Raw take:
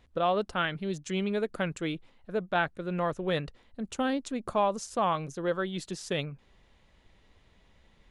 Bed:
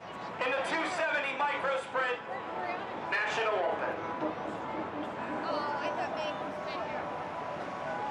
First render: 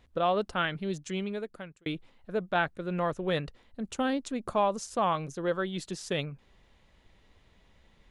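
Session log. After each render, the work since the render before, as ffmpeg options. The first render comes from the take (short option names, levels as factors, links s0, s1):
-filter_complex "[0:a]asplit=2[s0][s1];[s0]atrim=end=1.86,asetpts=PTS-STARTPTS,afade=t=out:st=0.93:d=0.93[s2];[s1]atrim=start=1.86,asetpts=PTS-STARTPTS,afade=t=in:d=0.004:c=hsin[s3];[s2][s3]concat=n=2:v=0:a=1"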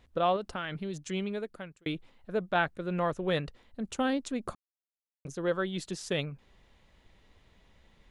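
-filter_complex "[0:a]asettb=1/sr,asplit=3[s0][s1][s2];[s0]atrim=end=0.364[s3];[s1]atrim=start=0.36:end=1.02,asetpts=PTS-STARTPTS,afade=t=in:d=0.004:c=qsin,afade=t=out:st=0.656:d=0.004:c=qsin,acompressor=threshold=0.0282:ratio=6:attack=3.2:release=140:knee=1:detection=peak[s4];[s2]atrim=start=1.016[s5];[s3][s4]acrossfade=d=0.004:c1=hsin:c2=qsin[s6];[s6][s5]acrossfade=d=0.004:c1=qsin:c2=hsin,asplit=3[s7][s8][s9];[s7]atrim=end=4.55,asetpts=PTS-STARTPTS,afade=t=out:st=4.546:d=0.004:c=hsin[s10];[s8]atrim=start=4.55:end=5.25,asetpts=PTS-STARTPTS,volume=0[s11];[s9]atrim=start=5.25,asetpts=PTS-STARTPTS,afade=t=in:d=0.004:c=hsin[s12];[s10][s11][s12]concat=n=3:v=0:a=1"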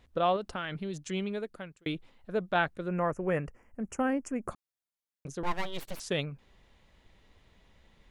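-filter_complex "[0:a]asplit=3[s0][s1][s2];[s0]afade=t=out:st=2.87:d=0.02[s3];[s1]asuperstop=centerf=3800:order=4:qfactor=1.1,afade=t=in:st=2.87:d=0.02,afade=t=out:st=4.5:d=0.02[s4];[s2]afade=t=in:st=4.5:d=0.02[s5];[s3][s4][s5]amix=inputs=3:normalize=0,asettb=1/sr,asplit=3[s6][s7][s8];[s6]atrim=end=5.434[s9];[s7]atrim=start=5.43:end=6,asetpts=PTS-STARTPTS,afade=t=in:d=0.004:c=qsin,afade=t=out:st=0.566:d=0.004:c=qsin,aeval=exprs='abs(val(0))':c=same[s10];[s8]atrim=start=5.996[s11];[s9][s10]acrossfade=d=0.004:c1=hsin:c2=qsin[s12];[s12][s11]acrossfade=d=0.004:c1=qsin:c2=hsin"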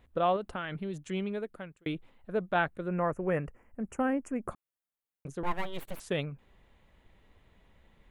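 -af "equalizer=f=5300:w=1.2:g=-11"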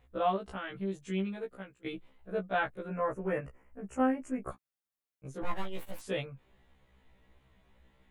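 -af "afftfilt=real='re*1.73*eq(mod(b,3),0)':imag='im*1.73*eq(mod(b,3),0)':win_size=2048:overlap=0.75"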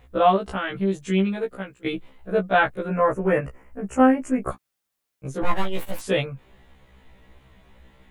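-af "volume=3.98"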